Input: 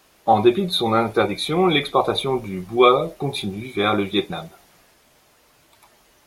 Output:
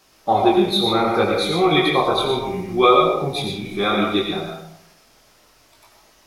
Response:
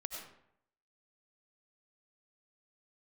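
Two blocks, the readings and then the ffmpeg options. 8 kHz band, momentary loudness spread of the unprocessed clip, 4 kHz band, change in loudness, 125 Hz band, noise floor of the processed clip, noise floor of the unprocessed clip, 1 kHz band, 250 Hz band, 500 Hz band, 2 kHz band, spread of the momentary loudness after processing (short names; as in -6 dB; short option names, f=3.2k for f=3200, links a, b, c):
+1.5 dB, 11 LU, +2.5 dB, +1.5 dB, 0.0 dB, -55 dBFS, -57 dBFS, +1.5 dB, +1.5 dB, +1.0 dB, +2.0 dB, 10 LU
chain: -filter_complex "[0:a]equalizer=f=5.3k:w=2.3:g=6,flanger=delay=18:depth=7.1:speed=0.66[a];[1:a]atrim=start_sample=2205[b];[a][b]afir=irnorm=-1:irlink=0,volume=5.5dB"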